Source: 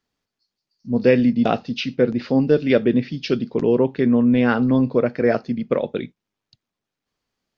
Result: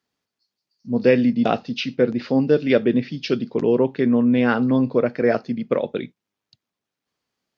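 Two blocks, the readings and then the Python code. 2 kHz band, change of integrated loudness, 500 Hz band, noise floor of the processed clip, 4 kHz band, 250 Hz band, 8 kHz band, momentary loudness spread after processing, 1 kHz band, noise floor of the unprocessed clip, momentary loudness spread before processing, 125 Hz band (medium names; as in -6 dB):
0.0 dB, -1.0 dB, -0.5 dB, -85 dBFS, 0.0 dB, -1.0 dB, no reading, 8 LU, 0.0 dB, -85 dBFS, 8 LU, -2.5 dB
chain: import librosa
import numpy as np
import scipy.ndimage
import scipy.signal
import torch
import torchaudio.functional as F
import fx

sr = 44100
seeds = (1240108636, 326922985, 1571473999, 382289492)

y = scipy.signal.sosfilt(scipy.signal.butter(2, 67.0, 'highpass', fs=sr, output='sos'), x)
y = fx.low_shelf(y, sr, hz=150.0, db=-4.0)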